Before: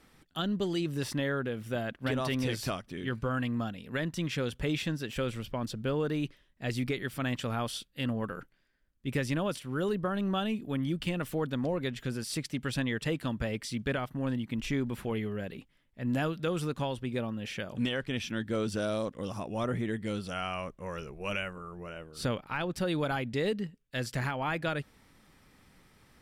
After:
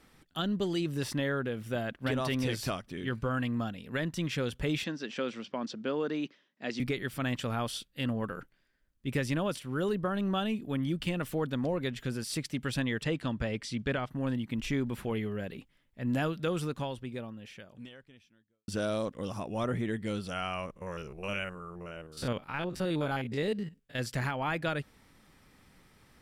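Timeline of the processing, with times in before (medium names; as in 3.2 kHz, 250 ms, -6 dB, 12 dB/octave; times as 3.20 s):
4.84–6.80 s: Chebyshev band-pass 210–6000 Hz, order 3
13.03–14.10 s: low-pass 7.3 kHz
16.54–18.68 s: fade out quadratic
20.66–23.99 s: spectrogram pixelated in time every 50 ms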